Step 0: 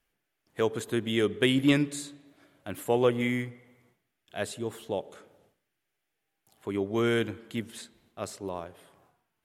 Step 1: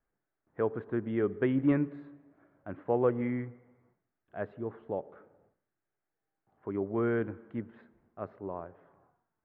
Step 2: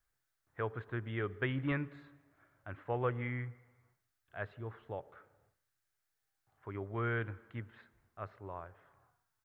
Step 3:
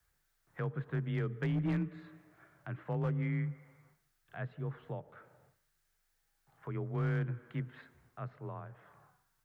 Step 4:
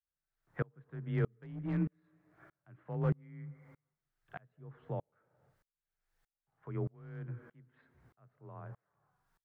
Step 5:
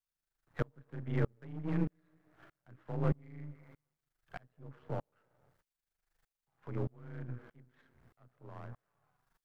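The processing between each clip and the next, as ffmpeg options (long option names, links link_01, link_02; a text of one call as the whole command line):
ffmpeg -i in.wav -af "lowpass=frequency=1600:width=0.5412,lowpass=frequency=1600:width=1.3066,volume=-3dB" out.wav
ffmpeg -i in.wav -af "firequalizer=gain_entry='entry(120,0);entry(180,-14);entry(1300,0);entry(3900,7)':delay=0.05:min_phase=1,volume=1.5dB" out.wav
ffmpeg -i in.wav -filter_complex "[0:a]afreqshift=25,acrossover=split=280[link_01][link_02];[link_02]acompressor=threshold=-57dB:ratio=2[link_03];[link_01][link_03]amix=inputs=2:normalize=0,asoftclip=type=hard:threshold=-34dB,volume=6.5dB" out.wav
ffmpeg -i in.wav -af "highshelf=frequency=3100:gain=-11.5,aeval=exprs='val(0)*pow(10,-34*if(lt(mod(-1.6*n/s,1),2*abs(-1.6)/1000),1-mod(-1.6*n/s,1)/(2*abs(-1.6)/1000),(mod(-1.6*n/s,1)-2*abs(-1.6)/1000)/(1-2*abs(-1.6)/1000))/20)':channel_layout=same,volume=6dB" out.wav
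ffmpeg -i in.wav -af "aeval=exprs='if(lt(val(0),0),0.251*val(0),val(0))':channel_layout=same,volume=3.5dB" out.wav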